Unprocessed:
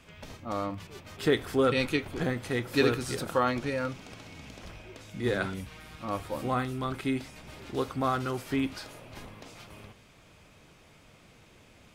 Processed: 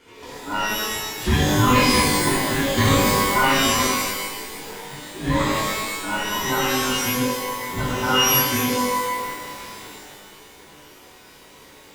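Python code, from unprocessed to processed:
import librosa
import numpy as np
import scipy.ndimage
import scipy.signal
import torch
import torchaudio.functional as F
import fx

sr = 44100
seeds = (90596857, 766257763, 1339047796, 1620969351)

y = fx.band_invert(x, sr, width_hz=500)
y = fx.rev_shimmer(y, sr, seeds[0], rt60_s=1.1, semitones=12, shimmer_db=-2, drr_db=-6.5)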